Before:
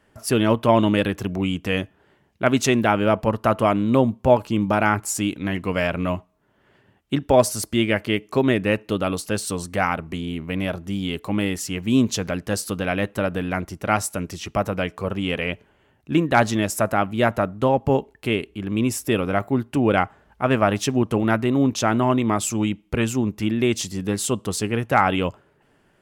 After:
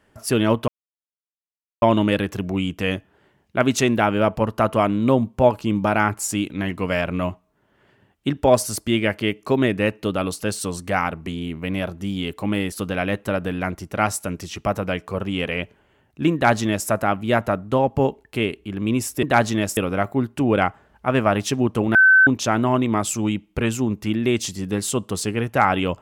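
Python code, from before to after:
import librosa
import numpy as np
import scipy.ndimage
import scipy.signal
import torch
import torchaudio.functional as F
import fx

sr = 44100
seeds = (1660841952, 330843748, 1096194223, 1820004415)

y = fx.edit(x, sr, fx.insert_silence(at_s=0.68, length_s=1.14),
    fx.cut(start_s=11.58, length_s=1.04),
    fx.duplicate(start_s=16.24, length_s=0.54, to_s=19.13),
    fx.bleep(start_s=21.31, length_s=0.32, hz=1530.0, db=-9.0), tone=tone)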